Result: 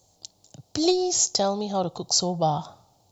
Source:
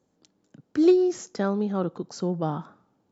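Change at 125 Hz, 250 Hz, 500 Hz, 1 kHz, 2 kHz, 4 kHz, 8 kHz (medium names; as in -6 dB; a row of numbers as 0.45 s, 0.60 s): 0.0 dB, -4.0 dB, -1.5 dB, +8.0 dB, -3.5 dB, +18.0 dB, no reading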